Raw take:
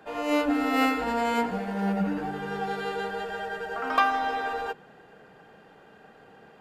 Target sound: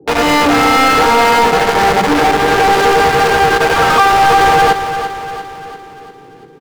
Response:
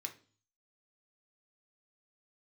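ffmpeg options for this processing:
-filter_complex "[0:a]highpass=82,equalizer=frequency=5000:width_type=o:width=0.47:gain=10.5,aecho=1:1:2.4:0.84,acrossover=split=280[link_01][link_02];[link_02]acrusher=bits=4:mix=0:aa=0.000001[link_03];[link_01][link_03]amix=inputs=2:normalize=0,asplit=2[link_04][link_05];[link_05]highpass=frequency=720:poles=1,volume=34dB,asoftclip=type=tanh:threshold=-6.5dB[link_06];[link_04][link_06]amix=inputs=2:normalize=0,lowpass=frequency=2100:poles=1,volume=-6dB,asplit=2[link_07][link_08];[link_08]aecho=0:1:345|690|1035|1380|1725|2070:0.316|0.164|0.0855|0.0445|0.0231|0.012[link_09];[link_07][link_09]amix=inputs=2:normalize=0,volume=4dB"

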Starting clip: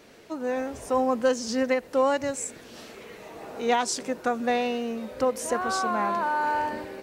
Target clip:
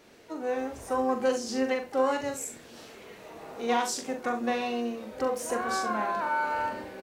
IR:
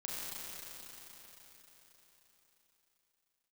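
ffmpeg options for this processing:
-filter_complex "[0:a]aecho=1:1:42|68:0.501|0.211,asplit=2[link_01][link_02];[1:a]atrim=start_sample=2205,afade=type=out:start_time=0.17:duration=0.01,atrim=end_sample=7938[link_03];[link_02][link_03]afir=irnorm=-1:irlink=0,volume=-13.5dB[link_04];[link_01][link_04]amix=inputs=2:normalize=0,asplit=2[link_05][link_06];[link_06]asetrate=66075,aresample=44100,atempo=0.66742,volume=-13dB[link_07];[link_05][link_07]amix=inputs=2:normalize=0,volume=-5.5dB"

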